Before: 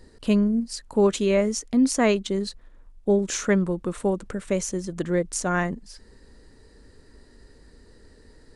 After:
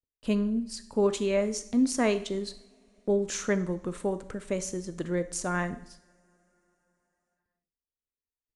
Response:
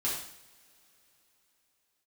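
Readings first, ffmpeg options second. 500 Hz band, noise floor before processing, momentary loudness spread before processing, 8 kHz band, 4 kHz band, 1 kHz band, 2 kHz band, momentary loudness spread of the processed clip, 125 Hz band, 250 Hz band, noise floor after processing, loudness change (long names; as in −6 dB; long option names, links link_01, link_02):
−5.0 dB, −53 dBFS, 9 LU, −5.0 dB, −5.0 dB, −5.5 dB, −5.0 dB, 9 LU, −6.5 dB, −6.0 dB, below −85 dBFS, −5.5 dB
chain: -filter_complex "[0:a]agate=range=-48dB:threshold=-42dB:ratio=16:detection=peak,asplit=2[link_01][link_02];[1:a]atrim=start_sample=2205[link_03];[link_02][link_03]afir=irnorm=-1:irlink=0,volume=-15dB[link_04];[link_01][link_04]amix=inputs=2:normalize=0,volume=-6.5dB"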